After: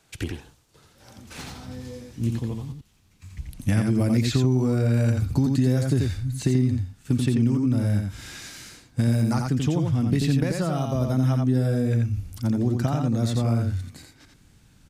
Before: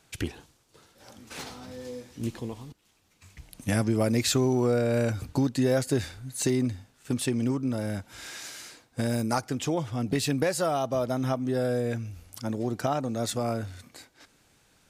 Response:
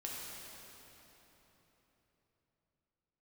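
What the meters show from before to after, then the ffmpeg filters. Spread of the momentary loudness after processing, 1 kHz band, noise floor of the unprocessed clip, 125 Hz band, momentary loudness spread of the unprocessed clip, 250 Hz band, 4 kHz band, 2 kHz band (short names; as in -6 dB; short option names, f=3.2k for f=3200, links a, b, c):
17 LU, -2.5 dB, -65 dBFS, +10.0 dB, 16 LU, +5.0 dB, -1.5 dB, -1.0 dB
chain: -filter_complex "[0:a]aecho=1:1:86:0.596,asubboost=boost=5:cutoff=230,acrossover=split=290|5000[a][b][c];[a]acompressor=threshold=-20dB:ratio=4[d];[b]acompressor=threshold=-26dB:ratio=4[e];[c]acompressor=threshold=-43dB:ratio=4[f];[d][e][f]amix=inputs=3:normalize=0"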